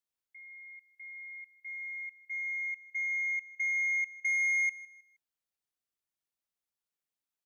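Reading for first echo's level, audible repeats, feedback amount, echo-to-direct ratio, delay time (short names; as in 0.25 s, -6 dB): -20.5 dB, 2, 37%, -20.0 dB, 0.157 s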